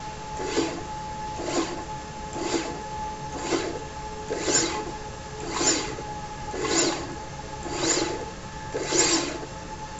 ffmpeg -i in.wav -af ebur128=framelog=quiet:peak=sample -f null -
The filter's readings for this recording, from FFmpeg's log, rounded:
Integrated loudness:
  I:         -27.7 LUFS
  Threshold: -37.7 LUFS
Loudness range:
  LRA:         4.9 LU
  Threshold: -47.7 LUFS
  LRA low:   -30.6 LUFS
  LRA high:  -25.8 LUFS
Sample peak:
  Peak:       -7.3 dBFS